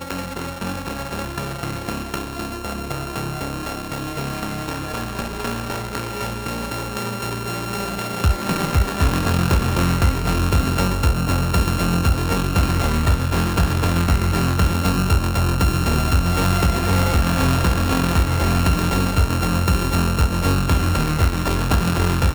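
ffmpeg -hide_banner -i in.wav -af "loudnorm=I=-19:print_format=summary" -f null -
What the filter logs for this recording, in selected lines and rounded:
Input Integrated:    -20.6 LUFS
Input True Peak:      -5.7 dBTP
Input LRA:             8.5 LU
Input Threshold:     -30.6 LUFS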